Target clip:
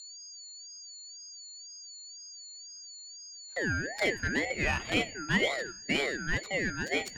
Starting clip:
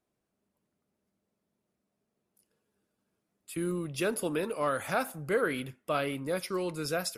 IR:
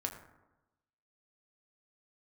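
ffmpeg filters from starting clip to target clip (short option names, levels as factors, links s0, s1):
-filter_complex "[0:a]adynamicsmooth=sensitivity=6:basefreq=800,aeval=exprs='val(0)+0.00562*sin(2*PI*5300*n/s)':c=same,afreqshift=390,asplit=2[s0][s1];[1:a]atrim=start_sample=2205,adelay=20[s2];[s1][s2]afir=irnorm=-1:irlink=0,volume=0.188[s3];[s0][s3]amix=inputs=2:normalize=0,aeval=exprs='val(0)*sin(2*PI*1100*n/s+1100*0.25/2*sin(2*PI*2*n/s))':c=same,volume=1.5"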